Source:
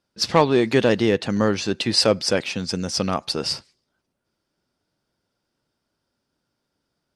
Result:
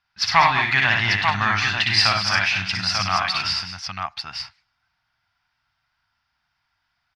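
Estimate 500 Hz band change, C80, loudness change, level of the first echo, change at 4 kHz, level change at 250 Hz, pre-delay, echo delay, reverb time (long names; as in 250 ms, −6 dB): −14.5 dB, no reverb audible, +2.0 dB, −3.0 dB, +3.5 dB, −12.0 dB, no reverb audible, 60 ms, no reverb audible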